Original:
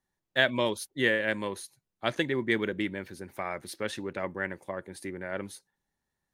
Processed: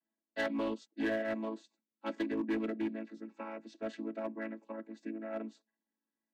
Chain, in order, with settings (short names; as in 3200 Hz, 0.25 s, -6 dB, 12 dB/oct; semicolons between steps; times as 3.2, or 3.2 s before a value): chord vocoder major triad, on A3; in parallel at -7 dB: wavefolder -26.5 dBFS; on the sum: gain -7.5 dB